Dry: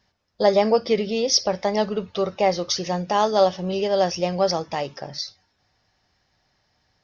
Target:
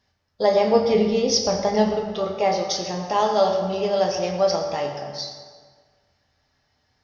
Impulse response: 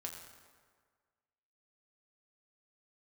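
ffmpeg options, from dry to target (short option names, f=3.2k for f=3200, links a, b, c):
-filter_complex "[0:a]asettb=1/sr,asplit=3[a][b][c];[a]atrim=end=0.734[d];[b]atrim=start=0.73:end=1.96,asetpts=PTS-STARTPTS,afade=t=in:d=0.004:c=qsin,afade=t=out:st=1.226:d=0.004:c=qsin,lowshelf=f=200:g=11.5[e];[c]atrim=start=1.956[f];[d][e]acrossfade=d=0.004:c1=hsin:c2=qsin[g];[g][f]acrossfade=d=0.004:c1=qsin:c2=hsin[h];[1:a]atrim=start_sample=2205[i];[h][i]afir=irnorm=-1:irlink=0,volume=1.5dB"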